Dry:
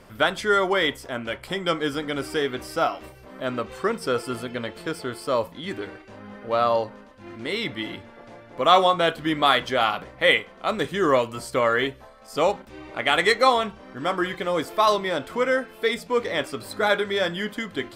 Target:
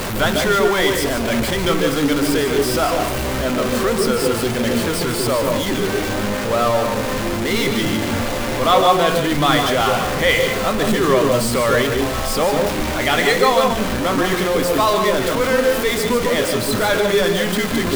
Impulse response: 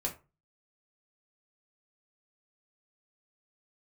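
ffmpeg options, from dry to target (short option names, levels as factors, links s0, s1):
-filter_complex "[0:a]aeval=exprs='val(0)+0.5*0.133*sgn(val(0))':c=same,asplit=2[s0][s1];[1:a]atrim=start_sample=2205,lowshelf=f=440:g=8,adelay=143[s2];[s1][s2]afir=irnorm=-1:irlink=0,volume=0.355[s3];[s0][s3]amix=inputs=2:normalize=0,volume=0.891"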